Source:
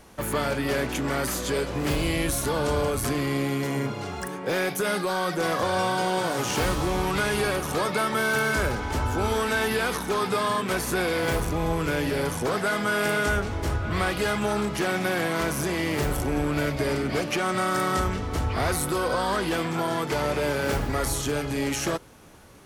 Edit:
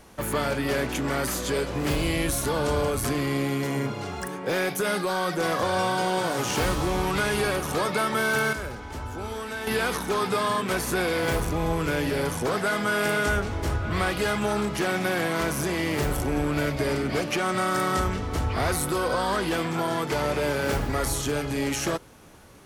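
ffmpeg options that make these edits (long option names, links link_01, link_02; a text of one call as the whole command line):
ffmpeg -i in.wav -filter_complex "[0:a]asplit=3[link_01][link_02][link_03];[link_01]atrim=end=8.532[link_04];[link_02]atrim=start=8.528:end=9.672,asetpts=PTS-STARTPTS,volume=-8.5dB[link_05];[link_03]atrim=start=9.668[link_06];[link_04][link_05]acrossfade=duration=0.004:curve1=hsin:curve2=hsin[link_07];[link_07][link_06]acrossfade=duration=0.004:curve1=hsin:curve2=hsin" out.wav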